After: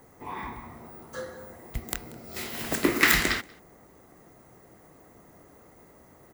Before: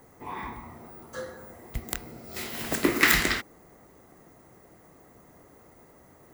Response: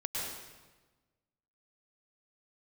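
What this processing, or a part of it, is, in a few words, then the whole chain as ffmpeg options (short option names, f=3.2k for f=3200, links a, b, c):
ducked delay: -filter_complex "[0:a]asplit=3[a][b][c];[b]adelay=185,volume=-9dB[d];[c]apad=whole_len=287639[e];[d][e]sidechaincompress=threshold=-42dB:ratio=5:attack=16:release=680[f];[a][f]amix=inputs=2:normalize=0"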